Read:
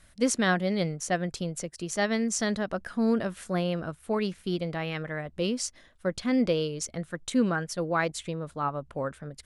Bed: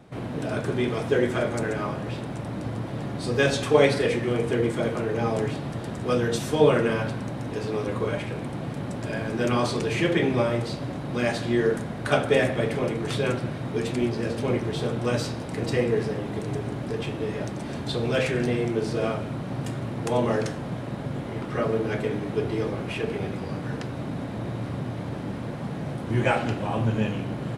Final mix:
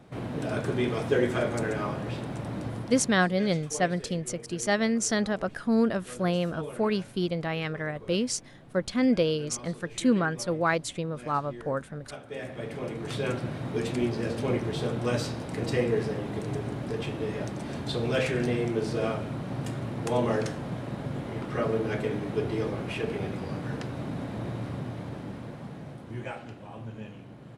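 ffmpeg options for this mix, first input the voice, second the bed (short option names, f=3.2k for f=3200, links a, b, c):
-filter_complex "[0:a]adelay=2700,volume=1.5dB[a];[1:a]volume=16dB,afade=t=out:st=2.58:d=0.73:silence=0.11885,afade=t=in:st=12.27:d=1.31:silence=0.125893,afade=t=out:st=24.45:d=1.91:silence=0.211349[b];[a][b]amix=inputs=2:normalize=0"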